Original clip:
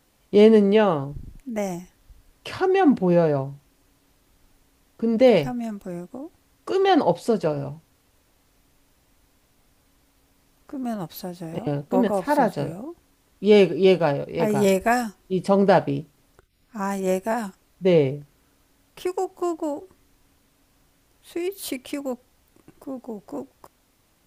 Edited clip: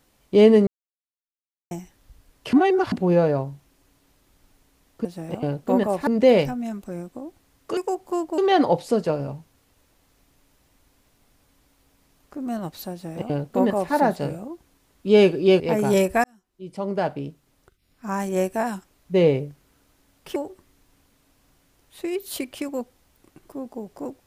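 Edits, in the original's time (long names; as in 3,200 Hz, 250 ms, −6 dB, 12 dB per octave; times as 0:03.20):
0:00.67–0:01.71: silence
0:02.53–0:02.92: reverse
0:11.29–0:12.31: duplicate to 0:05.05
0:13.97–0:14.31: remove
0:14.95–0:16.83: fade in linear
0:19.07–0:19.68: move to 0:06.75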